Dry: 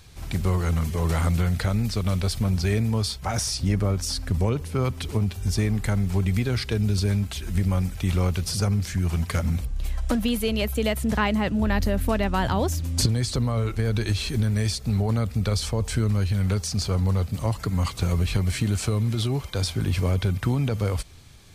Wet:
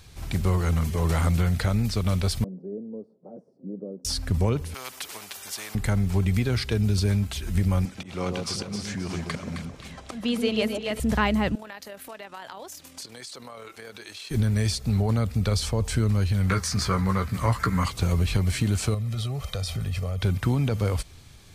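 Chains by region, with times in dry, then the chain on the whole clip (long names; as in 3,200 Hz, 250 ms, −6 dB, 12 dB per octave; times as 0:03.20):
0:02.44–0:04.05: elliptic band-pass filter 180–520 Hz, stop band 70 dB + spectral tilt +4 dB per octave
0:04.74–0:05.75: high-pass filter 850 Hz + every bin compressed towards the loudest bin 2 to 1
0:07.85–0:11.00: volume swells 193 ms + band-pass filter 200–7,000 Hz + delay that swaps between a low-pass and a high-pass 132 ms, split 950 Hz, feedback 61%, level −3 dB
0:11.55–0:14.31: Bessel high-pass filter 650 Hz + downward compressor 3 to 1, threshold −37 dBFS + amplitude modulation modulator 40 Hz, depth 25%
0:16.49–0:17.85: flat-topped bell 1,500 Hz +10 dB 1.3 octaves + double-tracking delay 16 ms −6 dB
0:18.94–0:20.22: comb filter 1.6 ms, depth 80% + downward compressor 5 to 1, threshold −26 dBFS
whole clip: no processing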